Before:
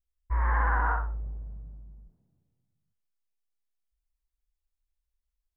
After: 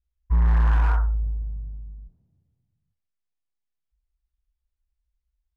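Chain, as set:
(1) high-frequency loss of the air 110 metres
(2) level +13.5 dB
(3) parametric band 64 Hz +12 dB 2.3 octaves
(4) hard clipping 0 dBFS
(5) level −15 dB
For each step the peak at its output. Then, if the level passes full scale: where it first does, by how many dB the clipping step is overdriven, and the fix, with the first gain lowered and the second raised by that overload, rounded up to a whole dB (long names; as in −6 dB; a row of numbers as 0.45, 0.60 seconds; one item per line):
−15.5, −2.0, +5.5, 0.0, −15.0 dBFS
step 3, 5.5 dB
step 2 +7.5 dB, step 5 −9 dB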